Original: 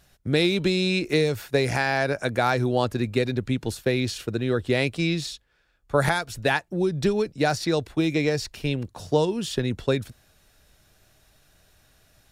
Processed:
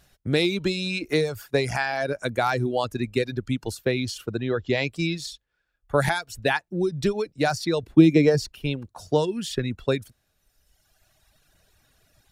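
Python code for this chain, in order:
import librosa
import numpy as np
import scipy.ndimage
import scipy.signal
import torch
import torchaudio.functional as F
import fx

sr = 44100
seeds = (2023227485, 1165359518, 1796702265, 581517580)

y = fx.dereverb_blind(x, sr, rt60_s=1.6)
y = fx.brickwall_lowpass(y, sr, high_hz=7500.0, at=(4.4, 4.89))
y = fx.peak_eq(y, sr, hz=230.0, db=12.5, octaves=2.2, at=(7.83, 8.53))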